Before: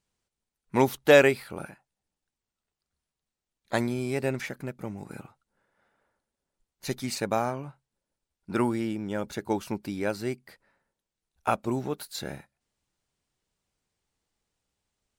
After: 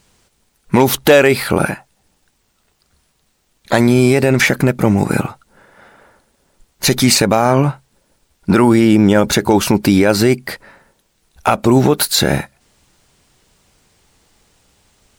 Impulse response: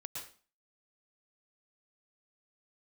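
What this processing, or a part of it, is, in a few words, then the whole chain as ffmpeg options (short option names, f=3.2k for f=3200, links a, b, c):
loud club master: -af "acompressor=threshold=-29dB:ratio=2,asoftclip=type=hard:threshold=-19dB,alimiter=level_in=27dB:limit=-1dB:release=50:level=0:latency=1,volume=-1dB"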